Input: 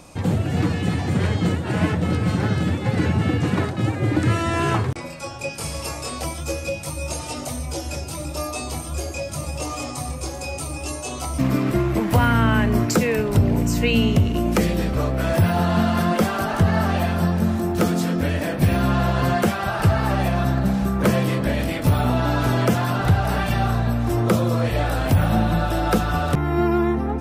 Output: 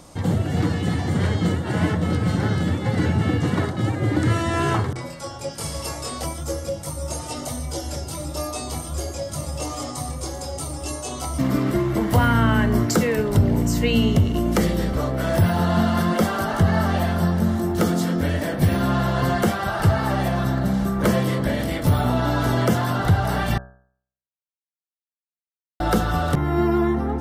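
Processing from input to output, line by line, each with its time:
0:06.26–0:07.31: parametric band 3,600 Hz −4 dB 1.3 octaves
0:23.58–0:25.80: silence
whole clip: notch filter 2,500 Hz, Q 6; hum removal 63.63 Hz, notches 27

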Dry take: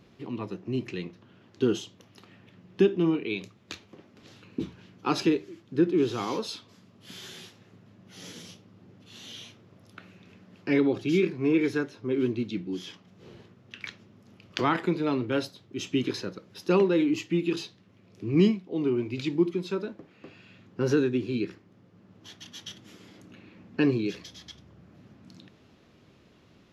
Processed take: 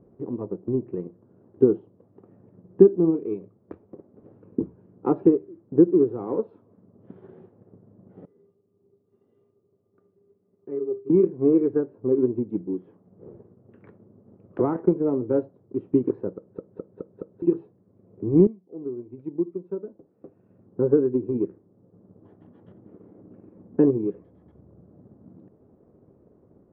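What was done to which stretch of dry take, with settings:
0:08.25–0:11.10: tuned comb filter 400 Hz, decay 0.22 s, harmonics odd, mix 90%
0:16.37: stutter in place 0.21 s, 5 plays
0:18.47–0:21.27: fade in quadratic, from −12 dB
whole clip: Bessel low-pass filter 680 Hz, order 4; parametric band 450 Hz +7 dB 0.99 octaves; transient designer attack +5 dB, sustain −3 dB

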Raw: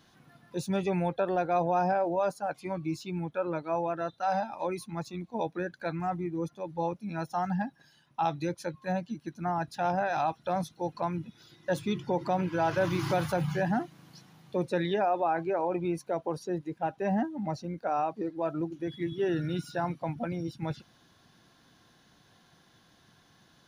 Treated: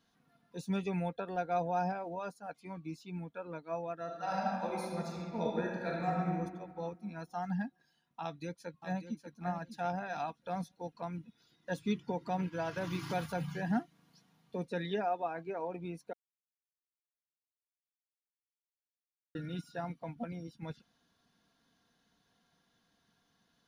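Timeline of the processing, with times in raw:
0:04.04–0:06.34: thrown reverb, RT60 2.1 s, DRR −4 dB
0:08.23–0:09.26: delay throw 590 ms, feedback 25%, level −7.5 dB
0:16.13–0:19.35: silence
whole clip: dynamic equaliser 810 Hz, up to −4 dB, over −39 dBFS, Q 0.98; comb filter 4.3 ms, depth 46%; expander for the loud parts 1.5 to 1, over −44 dBFS; level −3.5 dB

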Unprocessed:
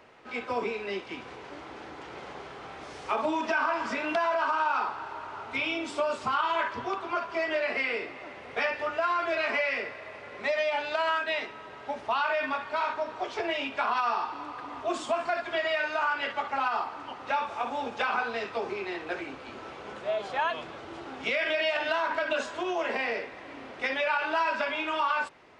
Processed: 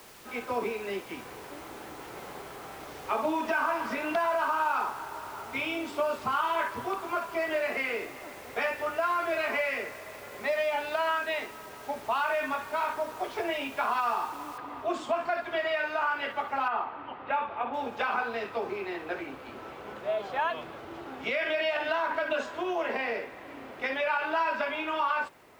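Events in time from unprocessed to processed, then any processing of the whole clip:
0:14.58: noise floor change −47 dB −61 dB
0:16.68–0:17.74: low-pass filter 3,300 Hz 24 dB per octave
whole clip: high-shelf EQ 3,700 Hz −8.5 dB

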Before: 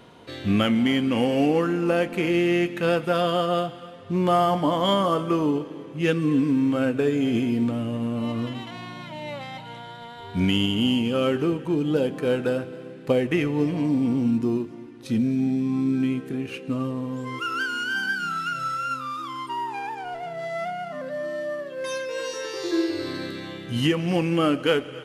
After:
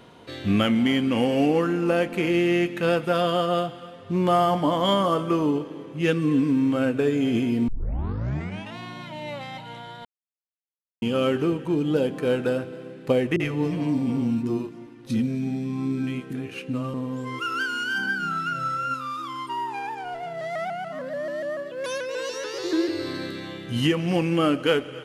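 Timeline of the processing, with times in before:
0:07.68: tape start 1.10 s
0:10.05–0:11.02: silence
0:13.36–0:16.94: multiband delay without the direct sound lows, highs 40 ms, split 350 Hz
0:17.98–0:18.94: tilt shelving filter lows +5 dB, about 1,500 Hz
0:20.41–0:22.89: pitch modulation by a square or saw wave saw up 6.9 Hz, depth 100 cents

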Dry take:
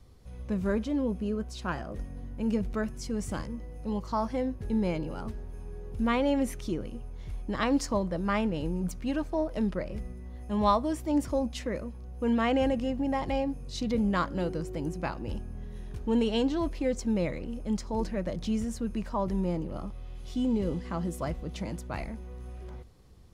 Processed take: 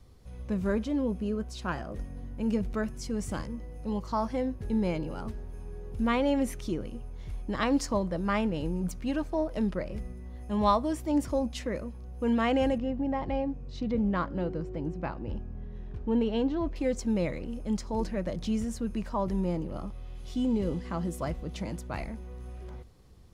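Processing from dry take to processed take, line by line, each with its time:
0:12.78–0:16.76: head-to-tape spacing loss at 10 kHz 23 dB

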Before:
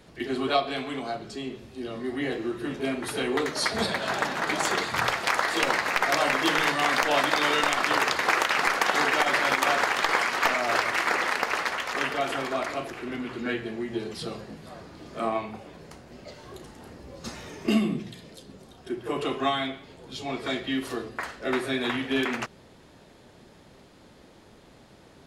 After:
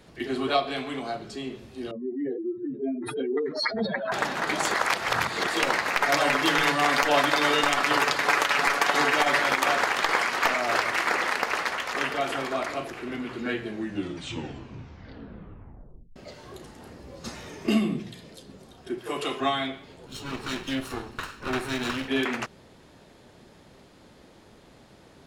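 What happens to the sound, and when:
0:01.91–0:04.12: expanding power law on the bin magnitudes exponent 2.8
0:04.74–0:05.47: reverse
0:06.01–0:09.42: comb filter 7 ms, depth 50%
0:13.64: tape stop 2.52 s
0:18.98–0:19.40: spectral tilt +2 dB per octave
0:20.06–0:22.08: lower of the sound and its delayed copy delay 0.73 ms

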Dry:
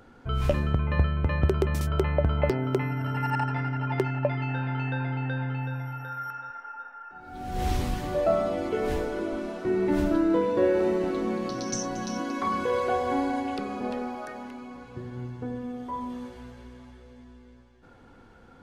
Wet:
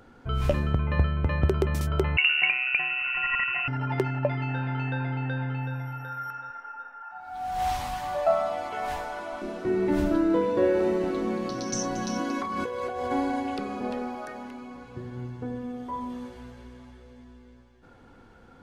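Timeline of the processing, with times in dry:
0:02.17–0:03.68: voice inversion scrambler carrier 2,800 Hz
0:07.02–0:09.42: low shelf with overshoot 560 Hz −10.5 dB, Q 3
0:11.75–0:13.11: compressor whose output falls as the input rises −30 dBFS

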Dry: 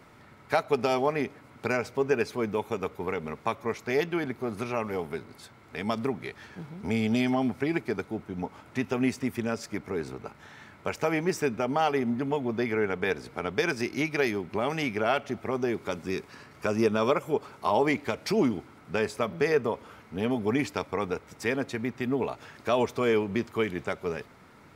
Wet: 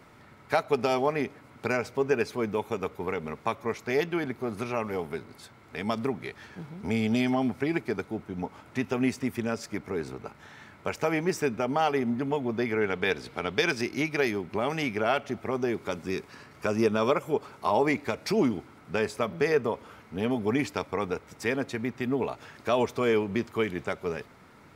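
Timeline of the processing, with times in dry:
0:12.81–0:13.81: parametric band 3,500 Hz +6.5 dB 1.2 octaves
0:17.66–0:18.29: notch filter 3,100 Hz

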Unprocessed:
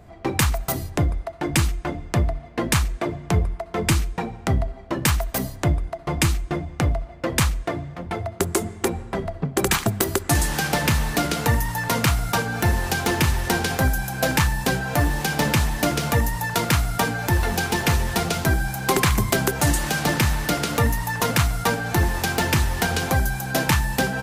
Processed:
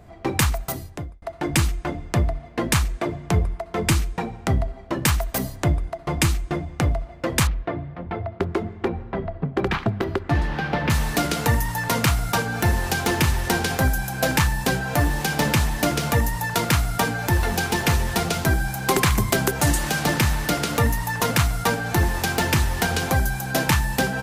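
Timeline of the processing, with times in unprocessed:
0:00.45–0:01.22: fade out
0:07.47–0:10.90: high-frequency loss of the air 330 metres

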